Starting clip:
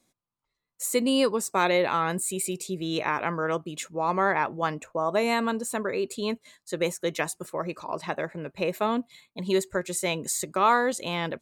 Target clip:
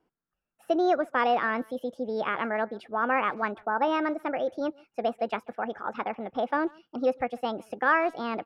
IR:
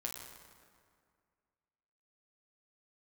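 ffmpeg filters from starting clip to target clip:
-filter_complex "[0:a]lowpass=1.3k,asetrate=59535,aresample=44100,asplit=2[a][b];[b]adelay=140,highpass=300,lowpass=3.4k,asoftclip=type=hard:threshold=-18.5dB,volume=-25dB[c];[a][c]amix=inputs=2:normalize=0"

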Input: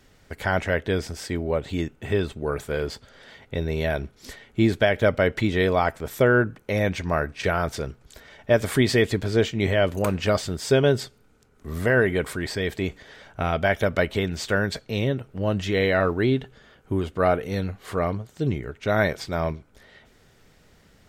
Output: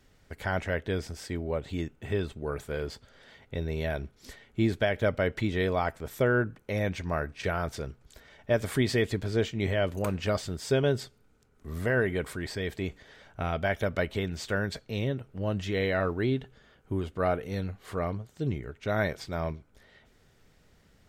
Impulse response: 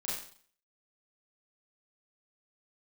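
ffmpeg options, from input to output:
-af "lowshelf=f=130:g=3.5,volume=-7dB"

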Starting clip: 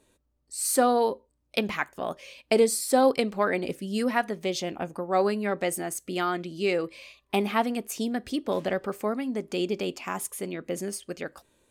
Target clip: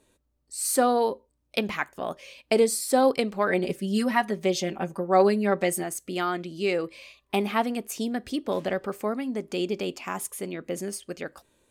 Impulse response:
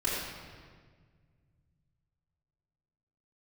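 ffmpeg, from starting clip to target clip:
-filter_complex "[0:a]asettb=1/sr,asplit=3[a][b][c];[a]atrim=end=3.484[d];[b]atrim=start=3.48:end=5.84,asetpts=PTS-STARTPTS,afade=t=in:d=0.004:c=qsin,afade=t=out:st=2.356:d=0.004:c=qsin,aecho=1:1:5.2:0.8,atrim=end_sample=104076[e];[c]atrim=start=5.836[f];[d][e]acrossfade=d=0.004:c1=hsin:c2=qsin[g];[g][f]acrossfade=d=0.004:c1=qsin:c2=hsin"

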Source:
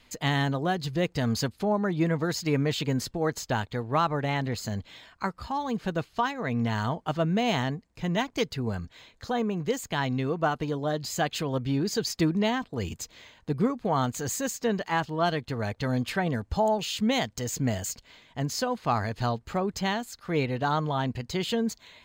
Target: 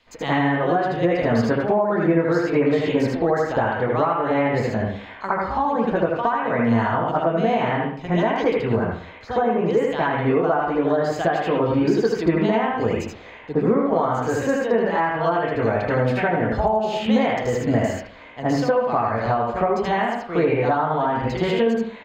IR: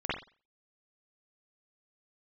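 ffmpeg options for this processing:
-filter_complex "[0:a]acrossover=split=380 6100:gain=0.158 1 0.251[a][b][c];[a][b][c]amix=inputs=3:normalize=0,aecho=1:1:78:0.631[d];[1:a]atrim=start_sample=2205,asetrate=30870,aresample=44100[e];[d][e]afir=irnorm=-1:irlink=0,acompressor=threshold=-21dB:ratio=6,lowshelf=f=480:g=10.5"

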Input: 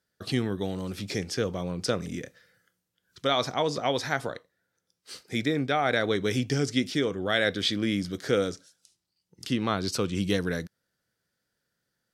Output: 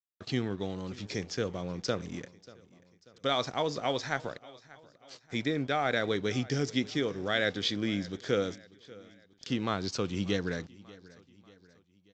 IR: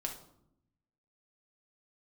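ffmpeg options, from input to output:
-af "aresample=16000,aeval=exprs='sgn(val(0))*max(abs(val(0))-0.00398,0)':c=same,aresample=44100,aecho=1:1:588|1176|1764:0.0891|0.0428|0.0205,volume=-3.5dB"

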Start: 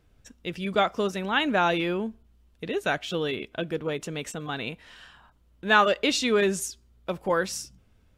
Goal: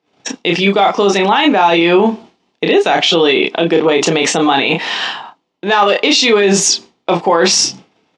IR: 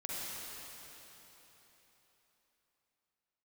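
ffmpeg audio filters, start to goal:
-filter_complex "[0:a]acontrast=83,agate=range=-33dB:threshold=-40dB:ratio=3:detection=peak,areverse,acompressor=threshold=-29dB:ratio=5,areverse,highpass=f=210:w=0.5412,highpass=f=210:w=1.3066,equalizer=f=230:t=q:w=4:g=-7,equalizer=f=560:t=q:w=4:g=-5,equalizer=f=810:t=q:w=4:g=7,equalizer=f=1.5k:t=q:w=4:g=-8,lowpass=f=6k:w=0.5412,lowpass=f=6k:w=1.3066,asplit=2[a][b];[b]adelay=30,volume=-5dB[c];[a][c]amix=inputs=2:normalize=0,alimiter=level_in=26dB:limit=-1dB:release=50:level=0:latency=1,volume=-1dB"

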